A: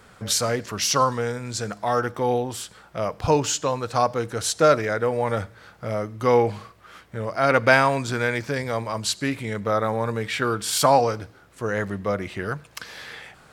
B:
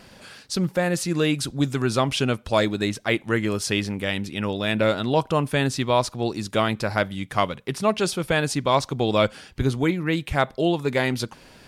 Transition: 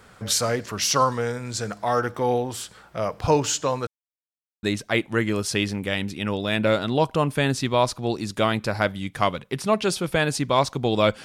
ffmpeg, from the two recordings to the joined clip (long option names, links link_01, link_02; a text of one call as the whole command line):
ffmpeg -i cue0.wav -i cue1.wav -filter_complex "[0:a]apad=whole_dur=11.24,atrim=end=11.24,asplit=2[link_01][link_02];[link_01]atrim=end=3.87,asetpts=PTS-STARTPTS,afade=type=out:start_time=3.866:duration=0.004:curve=hsin[link_03];[link_02]atrim=start=3.87:end=4.63,asetpts=PTS-STARTPTS,volume=0[link_04];[1:a]atrim=start=2.79:end=9.4,asetpts=PTS-STARTPTS,afade=type=in:duration=0.004:curve=hsin[link_05];[link_03][link_04][link_05]concat=n=3:v=0:a=1" out.wav